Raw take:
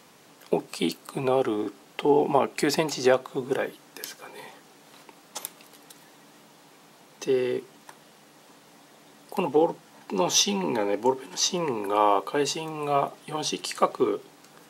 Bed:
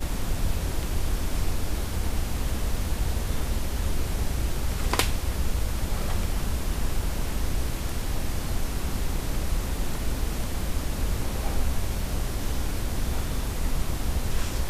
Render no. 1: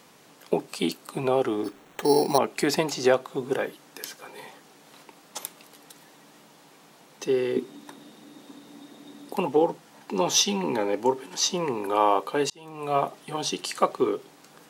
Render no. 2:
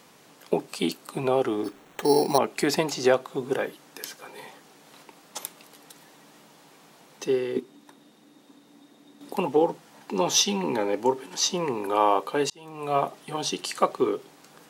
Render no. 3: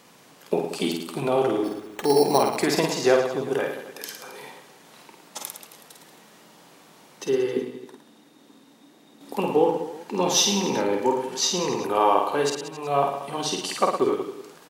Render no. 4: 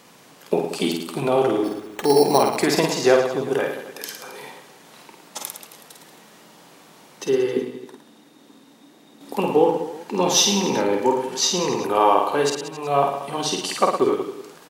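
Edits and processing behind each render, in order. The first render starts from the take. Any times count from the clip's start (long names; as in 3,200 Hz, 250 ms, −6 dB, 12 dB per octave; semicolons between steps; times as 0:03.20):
0:01.64–0:02.38: sample-rate reduction 4,900 Hz; 0:07.56–0:09.36: hollow resonant body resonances 270/3,700 Hz, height 14 dB, ringing for 30 ms; 0:12.50–0:12.97: fade in
0:07.31–0:09.21: expander for the loud parts, over −35 dBFS
reverse bouncing-ball delay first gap 50 ms, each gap 1.2×, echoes 5
level +3 dB; brickwall limiter −3 dBFS, peak gain reduction 1 dB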